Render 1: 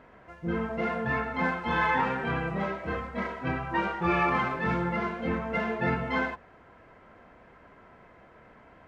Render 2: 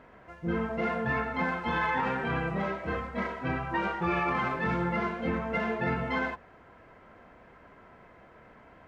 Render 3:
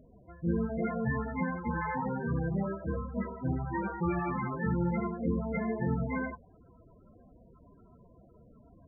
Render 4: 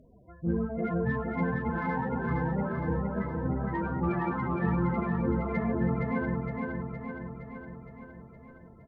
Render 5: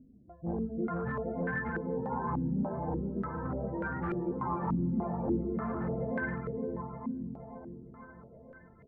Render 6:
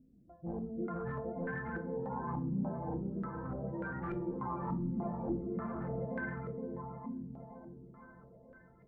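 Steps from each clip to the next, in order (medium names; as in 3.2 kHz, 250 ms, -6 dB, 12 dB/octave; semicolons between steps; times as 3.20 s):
peak limiter -20 dBFS, peak gain reduction 6 dB
bass shelf 390 Hz +10 dB; loudest bins only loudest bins 16; trim -6 dB
Chebyshev shaper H 3 -30 dB, 7 -38 dB, 8 -43 dB, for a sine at -19 dBFS; on a send: feedback delay 465 ms, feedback 60%, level -3.5 dB; on the sum: trim +1.5 dB
hard clipper -24.5 dBFS, distortion -15 dB; step-sequenced low-pass 3.4 Hz 260–1700 Hz; trim -6 dB
simulated room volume 330 m³, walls furnished, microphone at 0.76 m; trim -6 dB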